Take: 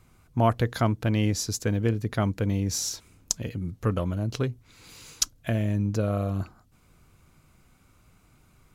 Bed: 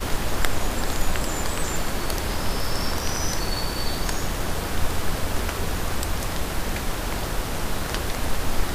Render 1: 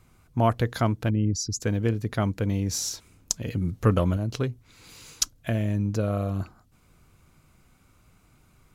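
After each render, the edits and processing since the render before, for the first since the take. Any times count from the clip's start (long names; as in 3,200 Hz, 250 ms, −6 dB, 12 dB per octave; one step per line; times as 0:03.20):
0:01.10–0:01.62: spectral envelope exaggerated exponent 2
0:03.48–0:04.17: clip gain +5 dB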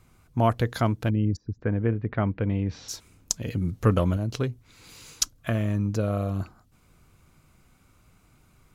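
0:01.35–0:02.88: low-pass filter 1,700 Hz → 3,400 Hz 24 dB per octave
0:05.38–0:05.88: parametric band 1,200 Hz +11.5 dB 0.45 octaves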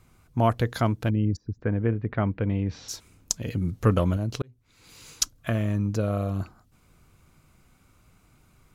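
0:04.42–0:05.10: fade in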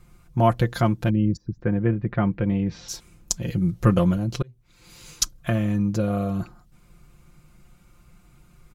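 low-shelf EQ 150 Hz +7.5 dB
comb filter 5.7 ms, depth 69%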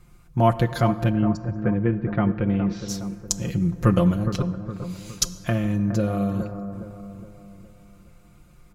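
bucket-brigade delay 414 ms, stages 4,096, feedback 46%, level −9.5 dB
dense smooth reverb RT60 2.4 s, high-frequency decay 0.4×, DRR 14 dB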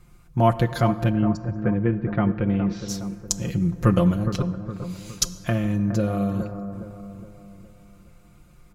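no processing that can be heard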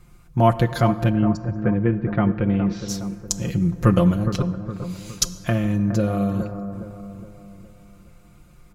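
level +2 dB
brickwall limiter −2 dBFS, peak gain reduction 2 dB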